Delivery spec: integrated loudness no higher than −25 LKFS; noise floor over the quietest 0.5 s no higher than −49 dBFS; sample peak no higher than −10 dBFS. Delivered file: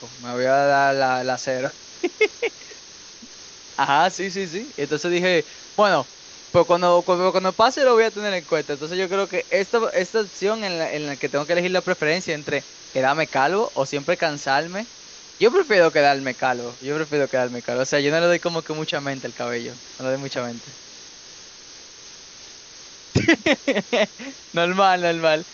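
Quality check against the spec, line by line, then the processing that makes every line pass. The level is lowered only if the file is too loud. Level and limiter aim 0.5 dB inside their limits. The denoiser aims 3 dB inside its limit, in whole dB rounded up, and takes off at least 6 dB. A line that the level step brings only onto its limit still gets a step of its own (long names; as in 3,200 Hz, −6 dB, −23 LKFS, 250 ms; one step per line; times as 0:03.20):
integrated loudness −21.5 LKFS: out of spec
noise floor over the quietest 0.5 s −43 dBFS: out of spec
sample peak −3.0 dBFS: out of spec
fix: broadband denoise 6 dB, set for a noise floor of −43 dBFS
level −4 dB
brickwall limiter −10.5 dBFS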